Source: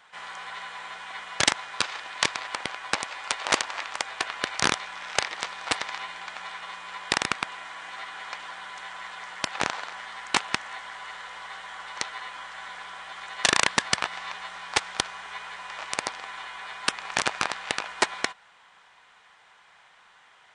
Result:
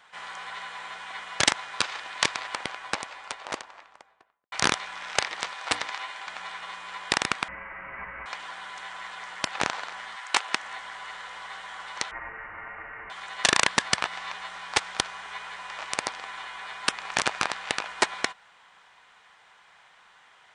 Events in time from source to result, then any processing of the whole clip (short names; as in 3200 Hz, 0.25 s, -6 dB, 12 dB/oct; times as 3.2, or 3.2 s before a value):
2.37–4.52 studio fade out
5.48–6.27 notches 60/120/180/240/300/360/420/480 Hz
7.48–8.26 inverted band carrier 3000 Hz
10.15–10.61 HPF 830 Hz -> 230 Hz
12.11–13.1 inverted band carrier 2900 Hz